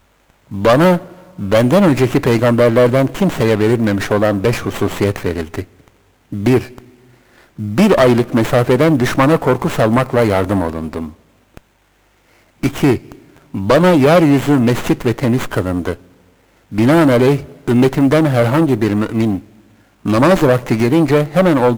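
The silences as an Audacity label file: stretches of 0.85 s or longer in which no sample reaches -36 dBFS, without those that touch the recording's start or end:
11.580000	12.630000	silence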